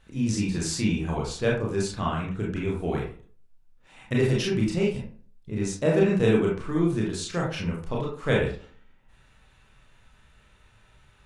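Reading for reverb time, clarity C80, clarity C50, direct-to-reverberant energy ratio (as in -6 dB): 0.45 s, 10.0 dB, 4.0 dB, -3.5 dB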